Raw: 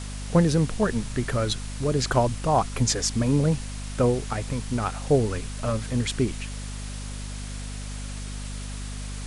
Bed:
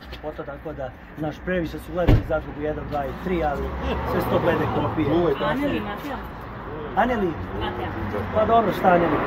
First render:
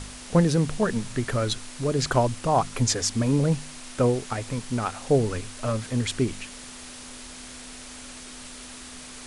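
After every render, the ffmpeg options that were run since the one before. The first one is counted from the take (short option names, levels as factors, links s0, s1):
-af "bandreject=f=50:t=h:w=4,bandreject=f=100:t=h:w=4,bandreject=f=150:t=h:w=4,bandreject=f=200:t=h:w=4"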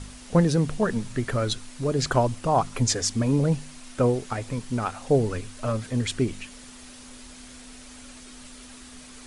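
-af "afftdn=nr=6:nf=-42"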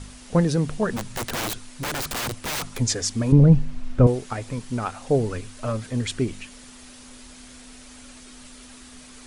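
-filter_complex "[0:a]asplit=3[s0][s1][s2];[s0]afade=t=out:st=0.96:d=0.02[s3];[s1]aeval=exprs='(mod(14.1*val(0)+1,2)-1)/14.1':c=same,afade=t=in:st=0.96:d=0.02,afade=t=out:st=2.78:d=0.02[s4];[s2]afade=t=in:st=2.78:d=0.02[s5];[s3][s4][s5]amix=inputs=3:normalize=0,asettb=1/sr,asplit=3[s6][s7][s8];[s6]atrim=end=3.324[s9];[s7]atrim=start=3.32:end=4.07,asetpts=PTS-STARTPTS,afade=t=in:d=0.004:c=qsin,afade=t=out:st=0.746:d=0.004:c=qsin,aemphasis=mode=reproduction:type=riaa[s10];[s8]atrim=start=4.066[s11];[s9][s10]acrossfade=d=0.004:c1=hsin:c2=qsin[s12];[s12][s11]acrossfade=d=0.004:c1=qsin:c2=hsin"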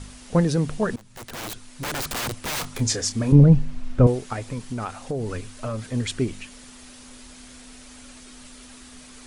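-filter_complex "[0:a]asettb=1/sr,asplit=3[s0][s1][s2];[s0]atrim=end=2.514[s3];[s1]atrim=start=2.51:end=3.44,asetpts=PTS-STARTPTS,afade=t=in:d=0.004:c=qsin,afade=t=out:st=0.926:d=0.004:c=qsin,asplit=2[s4][s5];[s5]adelay=28,volume=0.316[s6];[s4][s6]amix=inputs=2:normalize=0,atrim=end_sample=41013[s7];[s2]atrim=start=3.436[s8];[s3][s7]acrossfade=d=0.004:c1=hsin:c2=qsin[s9];[s9][s8]acrossfade=d=0.004:c1=qsin:c2=hsin,asettb=1/sr,asplit=3[s10][s11][s12];[s10]atrim=end=4.434[s13];[s11]atrim=start=4.43:end=5.79,asetpts=PTS-STARTPTS,afade=t=in:d=0.004:c=qsin,afade=t=out:st=1.356:d=0.004:c=qsin,acompressor=threshold=0.0631:ratio=6:attack=3.2:release=140:knee=1:detection=peak[s14];[s12]atrim=start=5.786[s15];[s13][s14]acrossfade=d=0.004:c1=hsin:c2=qsin[s16];[s16][s15]acrossfade=d=0.004:c1=qsin:c2=hsin,asplit=2[s17][s18];[s17]atrim=end=0.96,asetpts=PTS-STARTPTS,afade=t=out:st=0.956:d=0.004:c=hsin:silence=0.0841395[s19];[s18]atrim=start=0.96,asetpts=PTS-STARTPTS,afade=t=in:d=1.03:silence=0.0841395[s20];[s19][s20]concat=n=2:v=0:a=1"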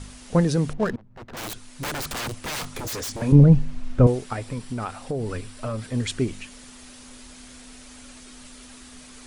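-filter_complex "[0:a]asettb=1/sr,asplit=3[s0][s1][s2];[s0]atrim=end=0.734[s3];[s1]atrim=start=0.73:end=1.37,asetpts=PTS-STARTPTS,afade=t=in:d=0.004:c=qsin,afade=t=out:st=0.636:d=0.004:c=qsin,adynamicsmooth=sensitivity=6:basefreq=700[s4];[s2]atrim=start=1.366[s5];[s3][s4]acrossfade=d=0.004:c1=hsin:c2=qsin[s6];[s6][s5]acrossfade=d=0.004:c1=qsin:c2=hsin,asettb=1/sr,asplit=3[s7][s8][s9];[s7]atrim=end=1.904[s10];[s8]atrim=start=1.9:end=3.22,asetpts=PTS-STARTPTS,afade=t=in:d=0.004:c=qsin,afade=t=out:st=1.316:d=0.004:c=qsin,aeval=exprs='0.0501*(abs(mod(val(0)/0.0501+3,4)-2)-1)':c=same[s11];[s9]atrim=start=3.216[s12];[s10][s11]acrossfade=d=0.004:c1=hsin:c2=qsin[s13];[s13][s12]acrossfade=d=0.004:c1=qsin:c2=hsin,asettb=1/sr,asplit=3[s14][s15][s16];[s14]atrim=end=4.244[s17];[s15]atrim=start=4.24:end=6,asetpts=PTS-STARTPTS,afade=t=in:d=0.004:c=qsin,afade=t=out:st=1.756:d=0.004:c=qsin,bandreject=f=6500:w=7.9[s18];[s16]atrim=start=5.996[s19];[s17][s18]acrossfade=d=0.004:c1=hsin:c2=qsin[s20];[s20][s19]acrossfade=d=0.004:c1=qsin:c2=hsin"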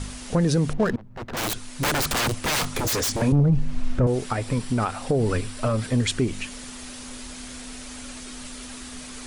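-af "acontrast=70,alimiter=limit=0.224:level=0:latency=1:release=189"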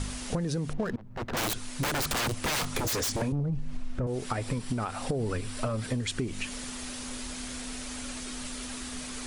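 -af "acompressor=threshold=0.0447:ratio=10"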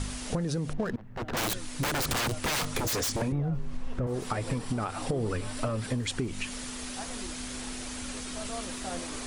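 -filter_complex "[1:a]volume=0.075[s0];[0:a][s0]amix=inputs=2:normalize=0"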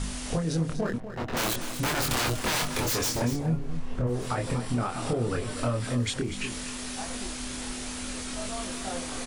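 -filter_complex "[0:a]asplit=2[s0][s1];[s1]adelay=25,volume=0.75[s2];[s0][s2]amix=inputs=2:normalize=0,aecho=1:1:243:0.282"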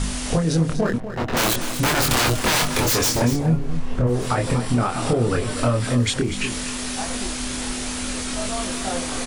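-af "volume=2.51"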